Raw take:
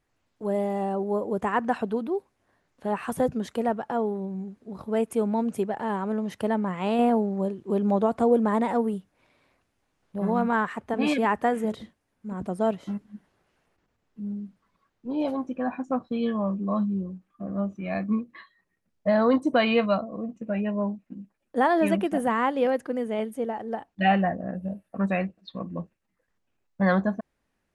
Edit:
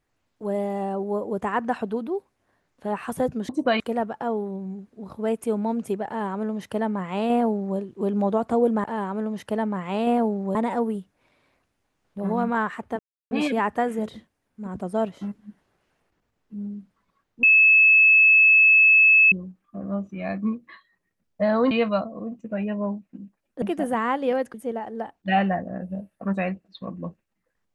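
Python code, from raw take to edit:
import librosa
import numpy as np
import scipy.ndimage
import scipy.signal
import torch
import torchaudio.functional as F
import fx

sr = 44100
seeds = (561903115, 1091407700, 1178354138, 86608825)

y = fx.edit(x, sr, fx.duplicate(start_s=5.76, length_s=1.71, to_s=8.53),
    fx.insert_silence(at_s=10.97, length_s=0.32),
    fx.bleep(start_s=15.09, length_s=1.89, hz=2600.0, db=-11.5),
    fx.move(start_s=19.37, length_s=0.31, to_s=3.49),
    fx.cut(start_s=21.59, length_s=0.37),
    fx.cut(start_s=22.88, length_s=0.39), tone=tone)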